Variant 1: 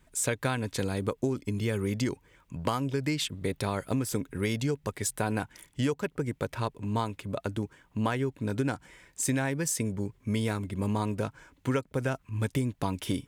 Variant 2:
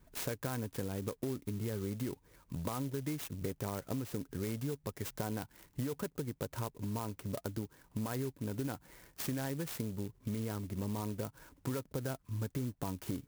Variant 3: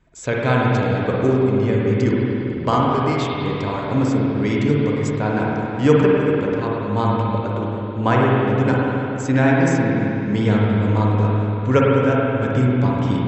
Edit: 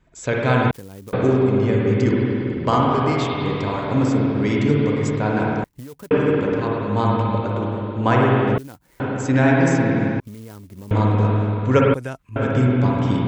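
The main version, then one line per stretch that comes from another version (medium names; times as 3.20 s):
3
0.71–1.13 s: from 2
5.64–6.11 s: from 2
8.58–9.00 s: from 2
10.20–10.91 s: from 2
11.94–12.36 s: from 1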